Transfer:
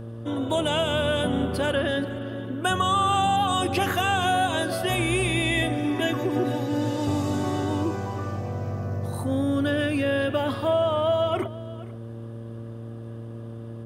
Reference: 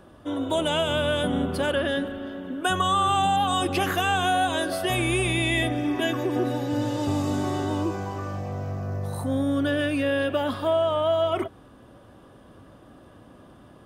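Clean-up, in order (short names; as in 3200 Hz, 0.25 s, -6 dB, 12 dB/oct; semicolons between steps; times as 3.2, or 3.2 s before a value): de-hum 114.6 Hz, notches 5; inverse comb 0.474 s -19 dB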